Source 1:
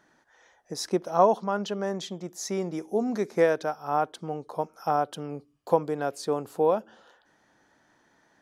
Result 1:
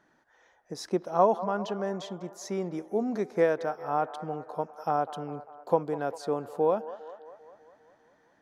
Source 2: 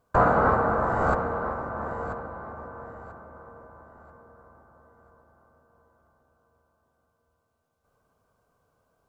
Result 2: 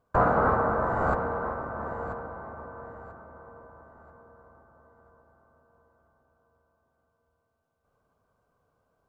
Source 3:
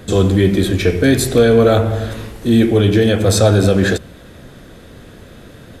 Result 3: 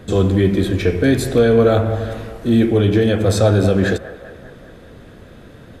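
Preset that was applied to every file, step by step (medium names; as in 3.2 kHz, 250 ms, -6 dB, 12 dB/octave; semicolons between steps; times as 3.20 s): treble shelf 3.6 kHz -7.5 dB; on a send: feedback echo behind a band-pass 199 ms, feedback 61%, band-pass 940 Hz, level -13.5 dB; on the sum: trim -2 dB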